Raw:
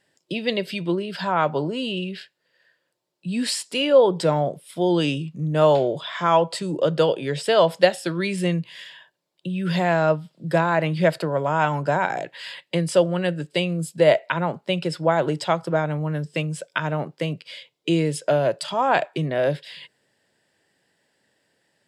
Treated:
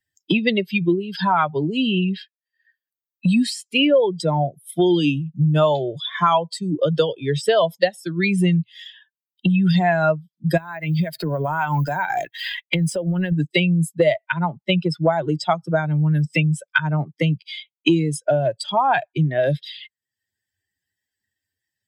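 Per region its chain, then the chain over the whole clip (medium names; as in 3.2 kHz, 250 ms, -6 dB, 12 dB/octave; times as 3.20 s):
10.57–13.32 s: companding laws mixed up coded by A + compression, threshold -25 dBFS
whole clip: expander on every frequency bin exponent 2; three bands compressed up and down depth 100%; trim +8 dB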